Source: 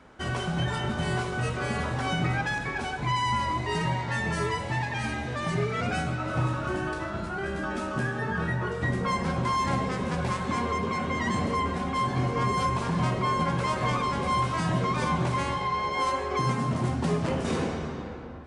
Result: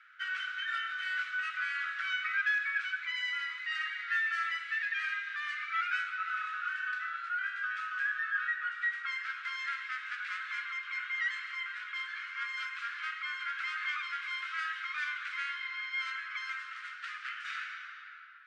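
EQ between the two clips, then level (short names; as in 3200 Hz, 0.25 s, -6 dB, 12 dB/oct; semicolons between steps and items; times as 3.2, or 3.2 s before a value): steep high-pass 1300 Hz 96 dB/oct; LPF 2200 Hz 12 dB/oct; +3.5 dB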